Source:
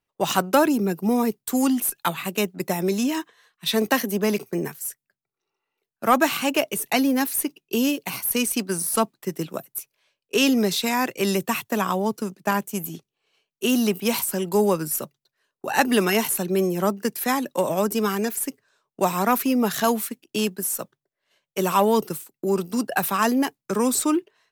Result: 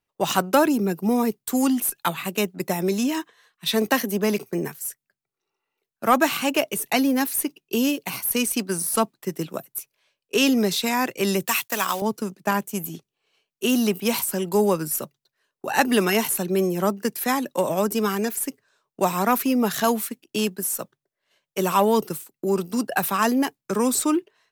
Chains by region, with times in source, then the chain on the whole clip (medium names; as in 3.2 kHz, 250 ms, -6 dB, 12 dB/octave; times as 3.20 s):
11.47–12.02 s: block-companded coder 5-bit + low-pass 4 kHz 6 dB/octave + tilt EQ +4.5 dB/octave
whole clip: none